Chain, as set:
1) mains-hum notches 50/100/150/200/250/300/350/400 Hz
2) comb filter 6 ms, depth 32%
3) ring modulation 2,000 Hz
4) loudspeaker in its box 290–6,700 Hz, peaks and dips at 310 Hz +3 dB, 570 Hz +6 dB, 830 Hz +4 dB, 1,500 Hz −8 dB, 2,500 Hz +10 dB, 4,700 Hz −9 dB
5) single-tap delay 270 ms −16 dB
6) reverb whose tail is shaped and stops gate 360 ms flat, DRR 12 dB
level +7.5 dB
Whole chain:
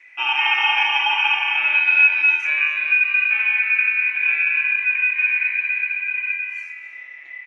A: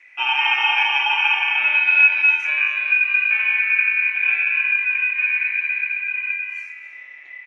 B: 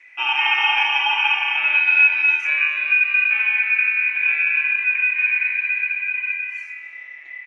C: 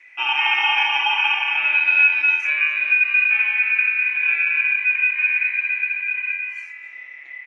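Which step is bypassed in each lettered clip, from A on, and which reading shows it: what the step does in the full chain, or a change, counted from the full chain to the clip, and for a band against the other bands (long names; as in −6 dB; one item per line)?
2, change in momentary loudness spread −2 LU
5, echo-to-direct ratio −10.5 dB to −12.0 dB
6, echo-to-direct ratio −10.5 dB to −16.0 dB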